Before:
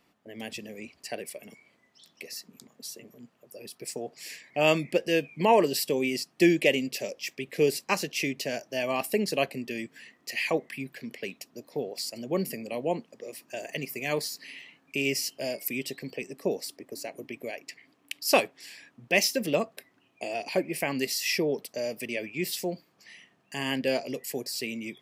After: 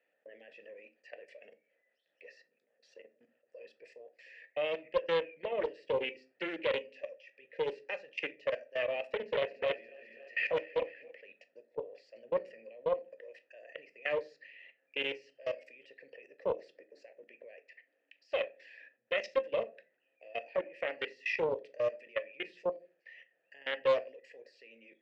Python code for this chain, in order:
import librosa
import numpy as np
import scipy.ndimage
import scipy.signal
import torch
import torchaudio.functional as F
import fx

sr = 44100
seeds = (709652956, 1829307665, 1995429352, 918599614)

y = fx.reverse_delay_fb(x, sr, ms=141, feedback_pct=70, wet_db=-5, at=(9.11, 11.11))
y = scipy.signal.sosfilt(scipy.signal.butter(4, 7000.0, 'lowpass', fs=sr, output='sos'), y)
y = fx.peak_eq(y, sr, hz=1200.0, db=14.0, octaves=2.7)
y = fx.level_steps(y, sr, step_db=22)
y = fx.vowel_filter(y, sr, vowel='e')
y = fx.room_shoebox(y, sr, seeds[0], volume_m3=180.0, walls='furnished', distance_m=0.52)
y = fx.doppler_dist(y, sr, depth_ms=0.24)
y = y * 10.0 ** (-1.0 / 20.0)